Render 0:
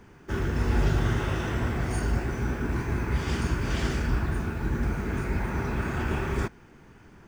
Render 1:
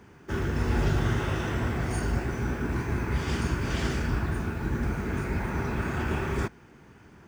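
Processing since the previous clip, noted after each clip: HPF 52 Hz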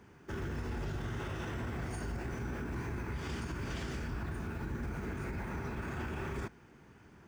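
limiter -25 dBFS, peak gain reduction 10 dB; gain -5.5 dB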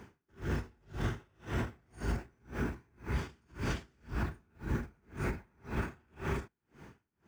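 dB-linear tremolo 1.9 Hz, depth 39 dB; gain +7 dB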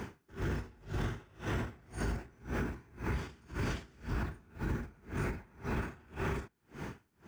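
compressor 6:1, threshold -44 dBFS, peak gain reduction 15 dB; gain +11 dB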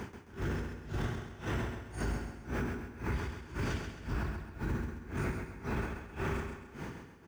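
feedback echo 0.133 s, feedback 38%, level -6.5 dB; on a send at -16 dB: reverb RT60 1.6 s, pre-delay 0.106 s

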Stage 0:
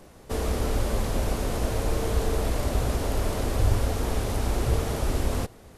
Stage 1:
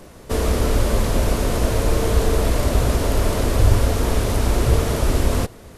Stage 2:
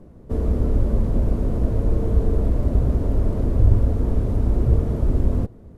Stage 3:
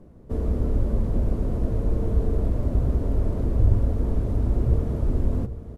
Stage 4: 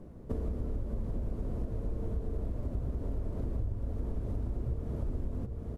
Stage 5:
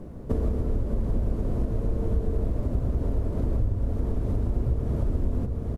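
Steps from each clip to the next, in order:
notch 790 Hz, Q 12; gain +7.5 dB
EQ curve 230 Hz 0 dB, 2700 Hz -23 dB, 5500 Hz -26 dB
echo 0.791 s -13.5 dB; gain -3.5 dB
compressor 6:1, threshold -31 dBFS, peak gain reduction 18 dB
echo 0.131 s -11 dB; gain +8.5 dB

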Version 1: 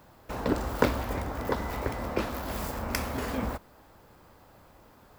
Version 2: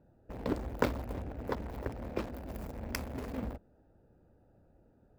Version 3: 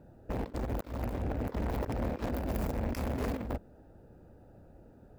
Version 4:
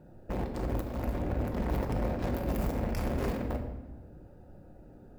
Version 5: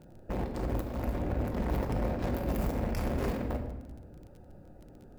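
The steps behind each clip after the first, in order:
Wiener smoothing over 41 samples; gain -5.5 dB
negative-ratio compressor -40 dBFS, ratio -0.5; gain +6.5 dB
shoebox room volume 630 m³, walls mixed, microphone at 0.95 m
crackle 21/s -44 dBFS

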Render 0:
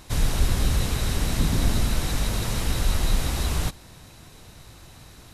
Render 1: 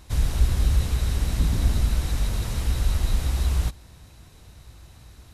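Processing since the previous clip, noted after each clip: bell 61 Hz +11 dB 1.3 oct; gain -5.5 dB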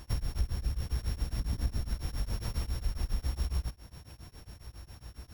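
sample sorter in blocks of 8 samples; compressor 4:1, threshold -30 dBFS, peak gain reduction 14.5 dB; beating tremolo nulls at 7.3 Hz; gain +2 dB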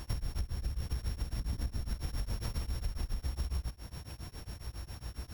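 compressor, threshold -36 dBFS, peak gain reduction 12 dB; gain +4.5 dB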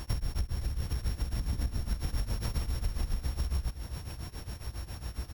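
echo 0.514 s -12 dB; gain +3.5 dB

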